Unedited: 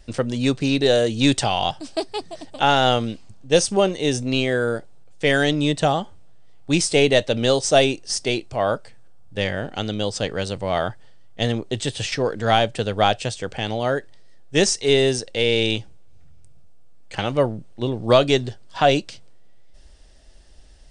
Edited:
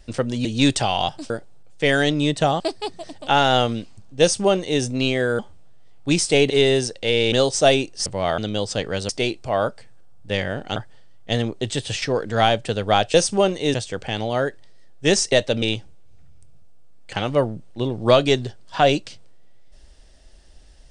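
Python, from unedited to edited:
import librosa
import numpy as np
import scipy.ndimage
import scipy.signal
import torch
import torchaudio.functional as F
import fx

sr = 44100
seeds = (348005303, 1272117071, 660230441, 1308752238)

y = fx.edit(x, sr, fx.cut(start_s=0.45, length_s=0.62),
    fx.duplicate(start_s=3.53, length_s=0.6, to_s=13.24),
    fx.move(start_s=4.71, length_s=1.3, to_s=1.92),
    fx.swap(start_s=7.12, length_s=0.3, other_s=14.82, other_length_s=0.82),
    fx.swap(start_s=8.16, length_s=1.67, other_s=10.54, other_length_s=0.32), tone=tone)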